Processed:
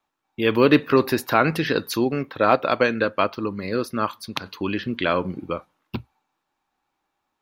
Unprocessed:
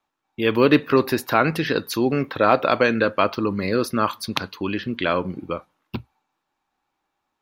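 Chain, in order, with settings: 2.04–4.46 s: upward expansion 1.5:1, over -26 dBFS

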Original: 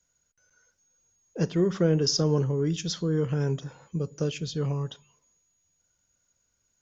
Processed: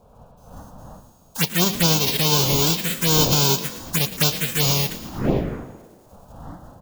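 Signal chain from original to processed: formants flattened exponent 0.1; wind noise 470 Hz -42 dBFS; level rider gain up to 11 dB; touch-sensitive phaser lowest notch 320 Hz, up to 1.9 kHz, full sweep at -13.5 dBFS; frequency-shifting echo 113 ms, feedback 58%, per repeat +39 Hz, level -15 dB; trim +1 dB

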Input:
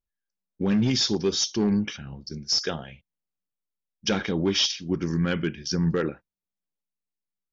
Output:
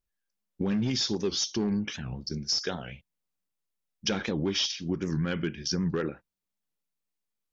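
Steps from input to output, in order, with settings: compression 2.5:1, threshold -32 dBFS, peak gain reduction 9 dB; warped record 78 rpm, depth 160 cents; trim +3 dB

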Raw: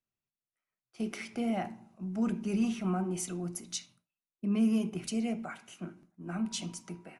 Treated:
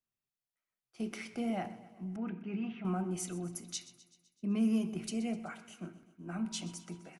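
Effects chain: 2.16–2.85 s: cabinet simulation 140–2700 Hz, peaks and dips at 230 Hz -5 dB, 390 Hz -4 dB, 560 Hz -10 dB, 1.1 kHz -6 dB; feedback delay 127 ms, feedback 59%, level -17 dB; trim -3 dB

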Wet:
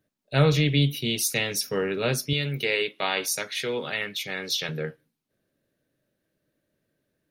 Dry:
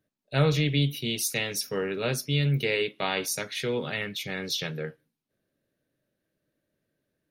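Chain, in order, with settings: 2.33–4.69 s: bass shelf 250 Hz -12 dB; trim +3 dB

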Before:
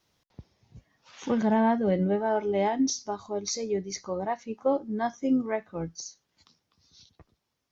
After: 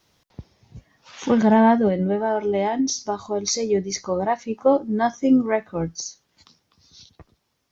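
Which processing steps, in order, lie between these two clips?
1.87–3.40 s: compression 4:1, threshold -27 dBFS, peak gain reduction 6.5 dB; trim +8 dB

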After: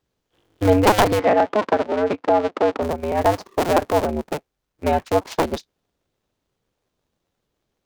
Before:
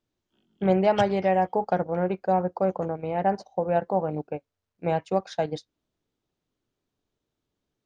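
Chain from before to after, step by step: cycle switcher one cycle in 2, inverted; 1.19–2.82 s: band-pass 200–3800 Hz; trim +6 dB

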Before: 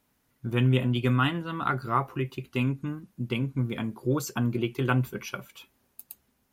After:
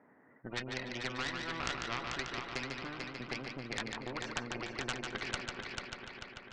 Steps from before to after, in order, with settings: spectral gate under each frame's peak -30 dB strong; high-pass 260 Hz 12 dB/octave; level-controlled noise filter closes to 740 Hz, open at -27.5 dBFS; compression 5:1, threshold -34 dBFS, peak gain reduction 13 dB; four-pole ladder low-pass 2 kHz, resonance 80%; Chebyshev shaper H 4 -7 dB, 5 -17 dB, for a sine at -27.5 dBFS; multi-head delay 147 ms, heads first and third, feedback 48%, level -8.5 dB; spectrum-flattening compressor 2:1; trim +5.5 dB

